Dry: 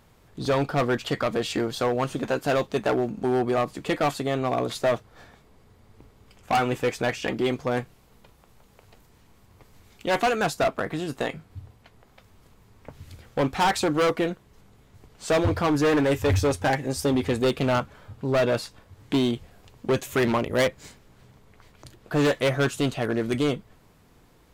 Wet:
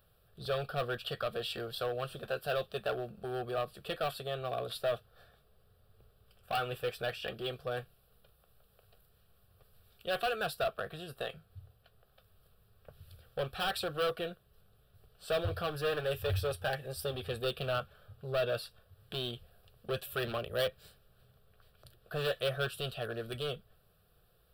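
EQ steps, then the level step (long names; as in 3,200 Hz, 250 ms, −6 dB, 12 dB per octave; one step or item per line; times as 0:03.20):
high-shelf EQ 9,600 Hz +11.5 dB
phaser with its sweep stopped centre 1,400 Hz, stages 8
dynamic equaliser 2,900 Hz, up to +4 dB, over −42 dBFS, Q 0.93
−9.0 dB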